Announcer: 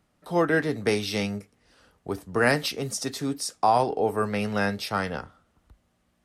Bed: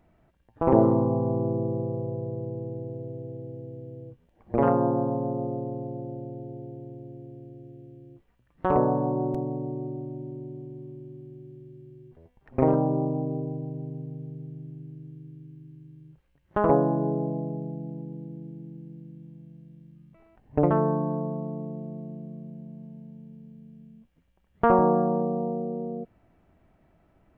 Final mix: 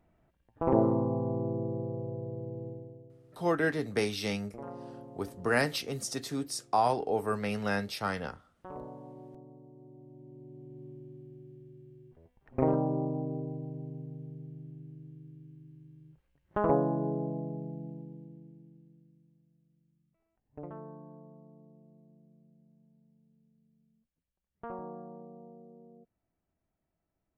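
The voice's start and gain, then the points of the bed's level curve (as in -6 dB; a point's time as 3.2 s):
3.10 s, -5.5 dB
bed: 2.68 s -6 dB
3.22 s -21.5 dB
9.72 s -21.5 dB
10.86 s -5.5 dB
17.85 s -5.5 dB
19.48 s -22 dB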